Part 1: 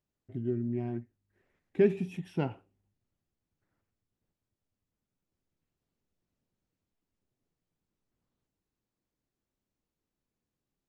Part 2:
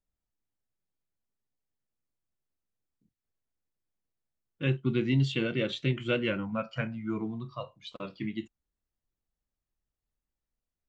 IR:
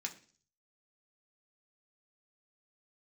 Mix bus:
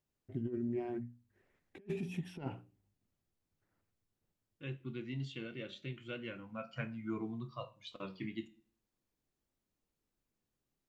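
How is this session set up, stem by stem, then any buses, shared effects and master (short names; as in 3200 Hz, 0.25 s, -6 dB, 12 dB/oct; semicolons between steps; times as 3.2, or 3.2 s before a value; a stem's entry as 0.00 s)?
-4.0 dB, 0.00 s, no send, notches 60/120/180/240/300 Hz; negative-ratio compressor -34 dBFS, ratio -0.5
6.34 s -12.5 dB -> 6.97 s -3.5 dB, 0.00 s, send -5.5 dB, flange 0.29 Hz, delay 6.6 ms, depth 5.5 ms, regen +84%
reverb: on, RT60 0.45 s, pre-delay 3 ms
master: dry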